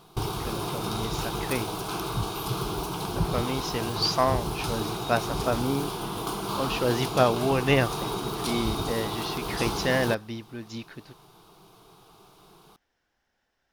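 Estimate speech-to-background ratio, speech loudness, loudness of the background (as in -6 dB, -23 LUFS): 2.0 dB, -29.0 LUFS, -31.0 LUFS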